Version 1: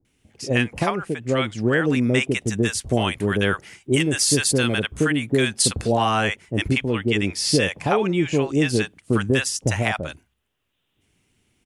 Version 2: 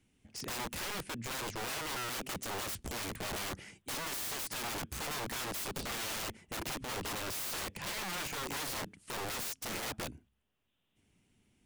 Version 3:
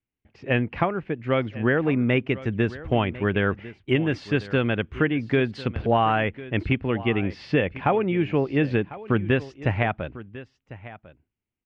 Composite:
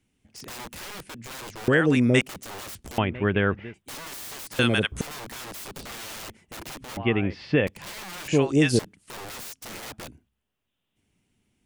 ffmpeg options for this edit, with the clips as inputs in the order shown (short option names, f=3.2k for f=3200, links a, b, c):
-filter_complex "[0:a]asplit=3[a][b][c];[2:a]asplit=2[d][e];[1:a]asplit=6[f][g][h][i][j][k];[f]atrim=end=1.682[l];[a]atrim=start=1.678:end=2.212[m];[g]atrim=start=2.208:end=2.982[n];[d]atrim=start=2.978:end=3.742[o];[h]atrim=start=3.738:end=4.592[p];[b]atrim=start=4.588:end=5.012[q];[i]atrim=start=5.008:end=6.972[r];[e]atrim=start=6.968:end=7.672[s];[j]atrim=start=7.668:end=8.282[t];[c]atrim=start=8.278:end=8.792[u];[k]atrim=start=8.788[v];[l][m]acrossfade=d=0.004:c1=hsin:c2=hsin[w];[w][n]acrossfade=d=0.004:c1=hsin:c2=hsin[x];[x][o]acrossfade=d=0.004:c1=hsin:c2=hsin[y];[y][p]acrossfade=d=0.004:c1=hsin:c2=hsin[z];[z][q]acrossfade=d=0.004:c1=hsin:c2=hsin[aa];[aa][r]acrossfade=d=0.004:c1=hsin:c2=hsin[ab];[ab][s]acrossfade=d=0.004:c1=hsin:c2=hsin[ac];[ac][t]acrossfade=d=0.004:c1=hsin:c2=hsin[ad];[ad][u]acrossfade=d=0.004:c1=hsin:c2=hsin[ae];[ae][v]acrossfade=d=0.004:c1=hsin:c2=hsin"